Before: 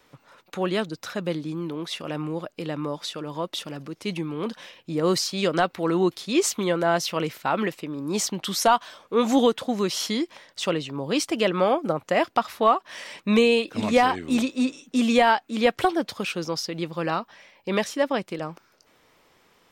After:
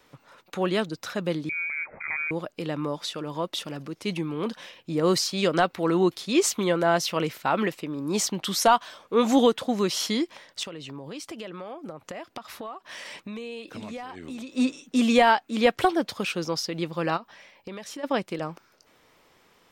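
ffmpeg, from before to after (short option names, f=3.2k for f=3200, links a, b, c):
-filter_complex "[0:a]asettb=1/sr,asplit=3[a][b][c];[a]atrim=end=1.494[d];[b]atrim=start=1.49:end=2.31,asetpts=PTS-STARTPTS,afade=t=in:d=0.004:c=qsin,afade=t=out:st=0.816:d=0.004:c=qsin,lowpass=f=2.2k:t=q:w=0.5098,lowpass=f=2.2k:t=q:w=0.6013,lowpass=f=2.2k:t=q:w=0.9,lowpass=f=2.2k:t=q:w=2.563,afreqshift=-2600[e];[c]atrim=start=2.306[f];[d][e]acrossfade=d=0.004:c1=hsin:c2=qsin[g];[g][f]acrossfade=d=0.004:c1=qsin:c2=hsin,asettb=1/sr,asplit=3[h][i][j];[h]atrim=end=10.634[k];[i]atrim=start=10.63:end=14.52,asetpts=PTS-STARTPTS,afade=t=in:d=0.004:c=qsin,afade=t=out:st=3.886:d=0.004:c=qsin,acompressor=threshold=-35dB:ratio=6:attack=3.2:release=140:knee=1:detection=peak[l];[j]atrim=start=14.516[m];[k][l]acrossfade=d=0.004:c1=hsin:c2=qsin[n];[n][m]acrossfade=d=0.004:c1=qsin:c2=hsin,asplit=3[o][p][q];[o]afade=t=out:st=17.16:d=0.02[r];[p]acompressor=threshold=-34dB:ratio=10:attack=3.2:release=140:knee=1:detection=peak,afade=t=in:st=17.16:d=0.02,afade=t=out:st=18.03:d=0.02[s];[q]afade=t=in:st=18.03:d=0.02[t];[r][s][t]amix=inputs=3:normalize=0"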